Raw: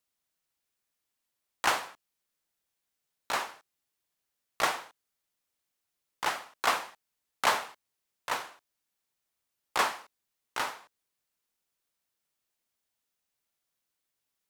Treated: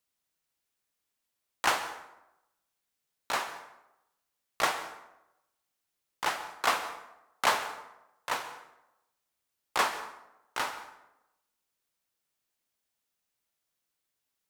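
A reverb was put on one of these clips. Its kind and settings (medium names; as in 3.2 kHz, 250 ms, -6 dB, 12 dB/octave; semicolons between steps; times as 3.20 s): plate-style reverb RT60 0.89 s, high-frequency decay 0.6×, pre-delay 115 ms, DRR 12.5 dB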